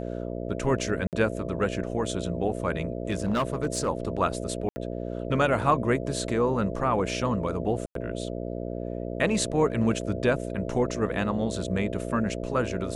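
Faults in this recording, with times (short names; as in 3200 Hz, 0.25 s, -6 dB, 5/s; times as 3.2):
buzz 60 Hz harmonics 11 -33 dBFS
1.07–1.13 gap 58 ms
3.08–3.89 clipped -21 dBFS
4.69–4.76 gap 70 ms
7.86–7.95 gap 93 ms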